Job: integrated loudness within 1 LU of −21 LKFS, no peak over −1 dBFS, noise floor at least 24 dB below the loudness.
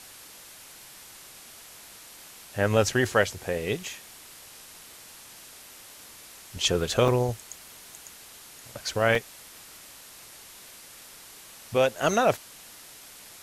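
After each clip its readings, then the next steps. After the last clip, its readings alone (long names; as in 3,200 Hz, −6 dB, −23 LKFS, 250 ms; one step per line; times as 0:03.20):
number of dropouts 2; longest dropout 2.6 ms; background noise floor −48 dBFS; target noise floor −50 dBFS; integrated loudness −26.0 LKFS; sample peak −7.5 dBFS; target loudness −21.0 LKFS
→ repair the gap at 0:07.08/0:09.15, 2.6 ms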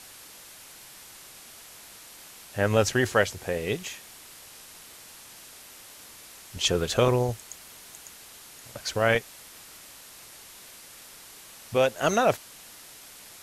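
number of dropouts 0; background noise floor −48 dBFS; target noise floor −50 dBFS
→ broadband denoise 6 dB, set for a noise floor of −48 dBFS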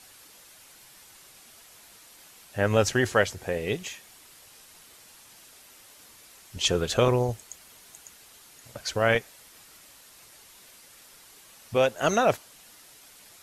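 background noise floor −53 dBFS; integrated loudness −26.0 LKFS; sample peak −7.5 dBFS; target loudness −21.0 LKFS
→ level +5 dB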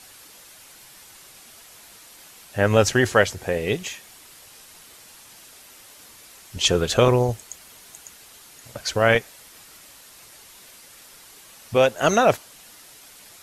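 integrated loudness −21.0 LKFS; sample peak −2.5 dBFS; background noise floor −48 dBFS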